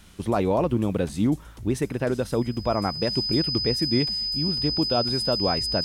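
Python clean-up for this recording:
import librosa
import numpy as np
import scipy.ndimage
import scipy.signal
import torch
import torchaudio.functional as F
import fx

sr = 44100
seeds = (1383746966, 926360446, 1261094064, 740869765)

y = fx.notch(x, sr, hz=5000.0, q=30.0)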